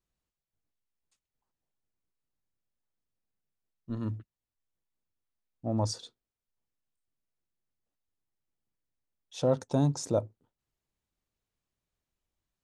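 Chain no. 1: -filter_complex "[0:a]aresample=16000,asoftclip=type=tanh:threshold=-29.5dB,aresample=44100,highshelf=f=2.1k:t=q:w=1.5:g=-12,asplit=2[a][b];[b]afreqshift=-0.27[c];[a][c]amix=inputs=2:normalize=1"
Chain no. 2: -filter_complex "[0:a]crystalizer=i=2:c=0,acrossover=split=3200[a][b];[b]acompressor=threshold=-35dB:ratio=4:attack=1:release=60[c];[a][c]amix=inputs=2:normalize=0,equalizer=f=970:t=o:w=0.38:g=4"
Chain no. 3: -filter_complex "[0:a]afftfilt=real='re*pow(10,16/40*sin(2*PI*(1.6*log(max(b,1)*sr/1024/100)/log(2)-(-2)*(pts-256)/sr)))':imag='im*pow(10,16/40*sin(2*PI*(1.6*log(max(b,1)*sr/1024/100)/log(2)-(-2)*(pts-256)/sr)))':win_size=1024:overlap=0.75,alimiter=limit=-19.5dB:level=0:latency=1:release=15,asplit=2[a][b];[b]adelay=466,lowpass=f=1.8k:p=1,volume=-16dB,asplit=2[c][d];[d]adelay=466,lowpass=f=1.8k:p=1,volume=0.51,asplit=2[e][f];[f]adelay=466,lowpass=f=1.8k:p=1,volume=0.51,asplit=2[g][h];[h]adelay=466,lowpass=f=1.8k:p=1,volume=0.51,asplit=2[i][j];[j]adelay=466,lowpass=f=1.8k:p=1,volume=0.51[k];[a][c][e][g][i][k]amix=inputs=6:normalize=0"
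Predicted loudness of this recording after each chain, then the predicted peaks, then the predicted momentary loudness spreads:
-40.0, -31.0, -33.5 LUFS; -24.5, -13.5, -19.0 dBFS; 11, 16, 22 LU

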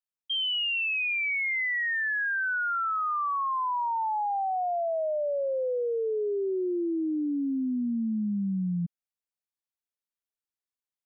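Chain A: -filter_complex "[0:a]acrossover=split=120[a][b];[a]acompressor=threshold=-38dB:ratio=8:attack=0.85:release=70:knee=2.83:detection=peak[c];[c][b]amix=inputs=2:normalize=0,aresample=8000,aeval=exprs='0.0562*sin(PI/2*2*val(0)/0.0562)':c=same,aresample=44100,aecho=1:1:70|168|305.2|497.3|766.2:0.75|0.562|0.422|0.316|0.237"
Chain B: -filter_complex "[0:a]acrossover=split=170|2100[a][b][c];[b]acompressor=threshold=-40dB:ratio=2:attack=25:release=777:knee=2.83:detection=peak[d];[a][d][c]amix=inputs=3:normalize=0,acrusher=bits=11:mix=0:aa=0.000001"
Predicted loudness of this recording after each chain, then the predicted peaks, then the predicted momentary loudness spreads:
-24.5, -31.5 LUFS; -14.5, -25.5 dBFS; 4, 10 LU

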